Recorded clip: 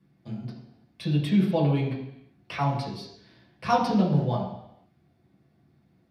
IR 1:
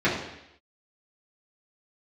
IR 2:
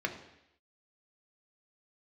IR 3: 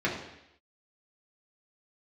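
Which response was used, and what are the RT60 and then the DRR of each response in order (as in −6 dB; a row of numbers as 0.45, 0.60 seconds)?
3; 0.80, 0.80, 0.80 seconds; −10.0, 3.5, −5.0 decibels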